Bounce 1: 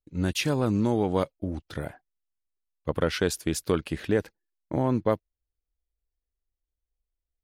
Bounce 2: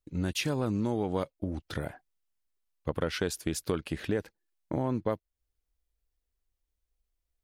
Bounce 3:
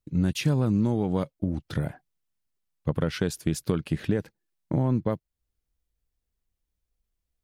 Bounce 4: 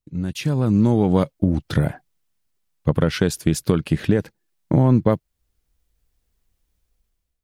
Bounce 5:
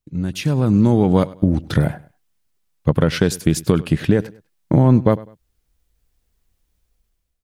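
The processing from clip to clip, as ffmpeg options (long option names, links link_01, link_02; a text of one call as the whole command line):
ffmpeg -i in.wav -af "acompressor=threshold=-37dB:ratio=2,volume=3.5dB" out.wav
ffmpeg -i in.wav -af "equalizer=frequency=150:width_type=o:width=1.4:gain=11" out.wav
ffmpeg -i in.wav -af "dynaudnorm=framelen=270:gausssize=5:maxgain=13.5dB,volume=-2dB" out.wav
ffmpeg -i in.wav -af "aecho=1:1:100|200:0.1|0.029,volume=2.5dB" out.wav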